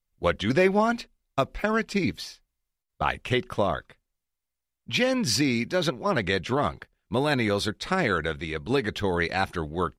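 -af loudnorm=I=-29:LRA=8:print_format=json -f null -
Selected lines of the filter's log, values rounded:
"input_i" : "-26.4",
"input_tp" : "-8.5",
"input_lra" : "3.4",
"input_thresh" : "-36.6",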